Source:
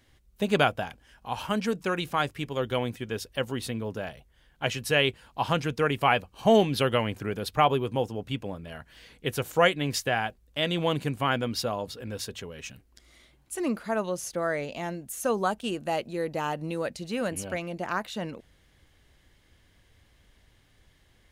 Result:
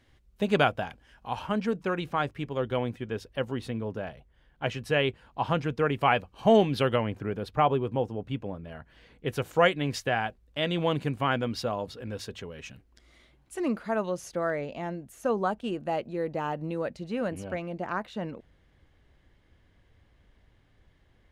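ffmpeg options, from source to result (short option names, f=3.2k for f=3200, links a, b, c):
-af "asetnsamples=n=441:p=0,asendcmd='1.39 lowpass f 1700;5.99 lowpass f 2900;6.96 lowpass f 1300;9.28 lowpass f 3000;14.5 lowpass f 1500',lowpass=f=3.7k:p=1"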